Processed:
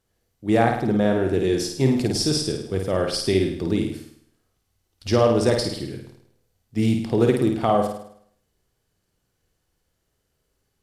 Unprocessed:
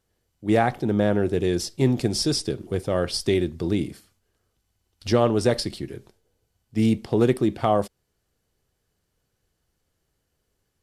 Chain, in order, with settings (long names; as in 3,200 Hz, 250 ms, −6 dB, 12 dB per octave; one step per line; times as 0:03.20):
flutter between parallel walls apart 9 metres, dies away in 0.65 s